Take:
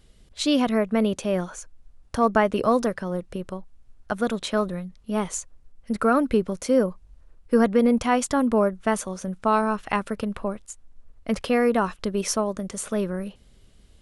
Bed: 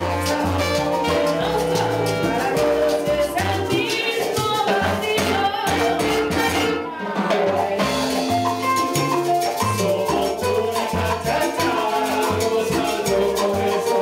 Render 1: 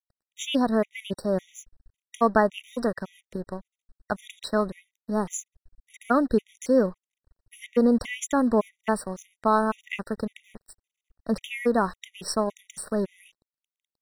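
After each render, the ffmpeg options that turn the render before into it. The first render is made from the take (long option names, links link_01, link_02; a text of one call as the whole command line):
ffmpeg -i in.wav -af "aeval=exprs='sgn(val(0))*max(abs(val(0))-0.00596,0)':channel_layout=same,afftfilt=real='re*gt(sin(2*PI*1.8*pts/sr)*(1-2*mod(floor(b*sr/1024/1900),2)),0)':imag='im*gt(sin(2*PI*1.8*pts/sr)*(1-2*mod(floor(b*sr/1024/1900),2)),0)':win_size=1024:overlap=0.75" out.wav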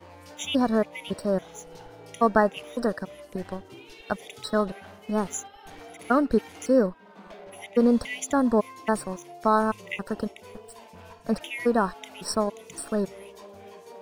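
ffmpeg -i in.wav -i bed.wav -filter_complex "[1:a]volume=-26dB[link_01];[0:a][link_01]amix=inputs=2:normalize=0" out.wav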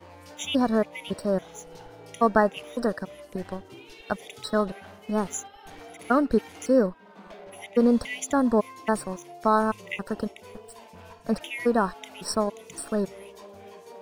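ffmpeg -i in.wav -af anull out.wav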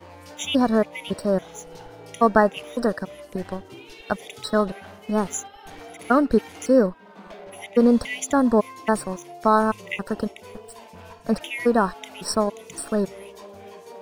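ffmpeg -i in.wav -af "volume=3.5dB" out.wav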